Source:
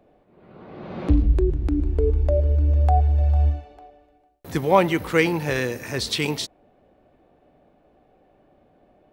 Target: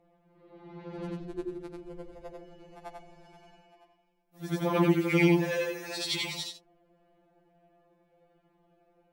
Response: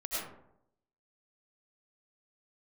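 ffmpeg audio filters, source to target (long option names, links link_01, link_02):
-af "afftfilt=real='re':imag='-im':win_size=8192:overlap=0.75,afftfilt=real='re*2.83*eq(mod(b,8),0)':imag='im*2.83*eq(mod(b,8),0)':win_size=2048:overlap=0.75"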